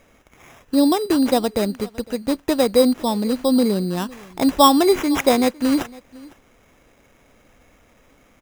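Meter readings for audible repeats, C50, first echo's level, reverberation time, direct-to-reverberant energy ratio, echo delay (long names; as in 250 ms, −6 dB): 1, no reverb audible, −22.5 dB, no reverb audible, no reverb audible, 506 ms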